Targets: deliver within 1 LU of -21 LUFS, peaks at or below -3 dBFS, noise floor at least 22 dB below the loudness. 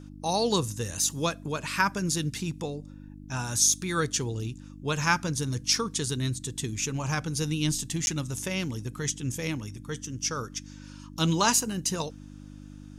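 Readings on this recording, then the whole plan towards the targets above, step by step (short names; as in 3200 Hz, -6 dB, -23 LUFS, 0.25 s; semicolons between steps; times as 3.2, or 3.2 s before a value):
dropouts 1; longest dropout 11 ms; hum 50 Hz; harmonics up to 300 Hz; hum level -43 dBFS; loudness -28.5 LUFS; peak -9.0 dBFS; loudness target -21.0 LUFS
-> interpolate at 8.06, 11 ms; de-hum 50 Hz, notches 6; gain +7.5 dB; limiter -3 dBFS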